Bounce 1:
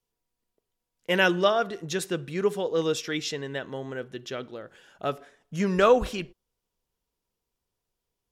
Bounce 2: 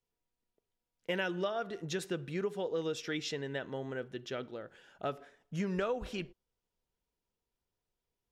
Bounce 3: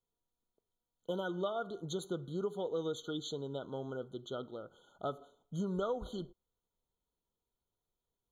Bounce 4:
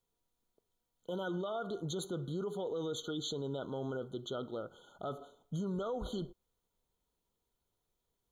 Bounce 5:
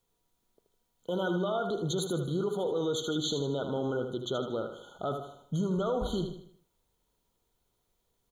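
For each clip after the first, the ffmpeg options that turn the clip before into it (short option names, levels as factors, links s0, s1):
-af "highshelf=f=6400:g=-8.5,bandreject=f=1100:w=15,acompressor=threshold=0.0447:ratio=6,volume=0.631"
-af "afftfilt=real='re*eq(mod(floor(b*sr/1024/1500),2),0)':imag='im*eq(mod(floor(b*sr/1024/1500),2),0)':win_size=1024:overlap=0.75,volume=0.841"
-af "alimiter=level_in=3.76:limit=0.0631:level=0:latency=1:release=21,volume=0.266,volume=1.78"
-af "aecho=1:1:78|156|234|312|390:0.398|0.167|0.0702|0.0295|0.0124,volume=2.11"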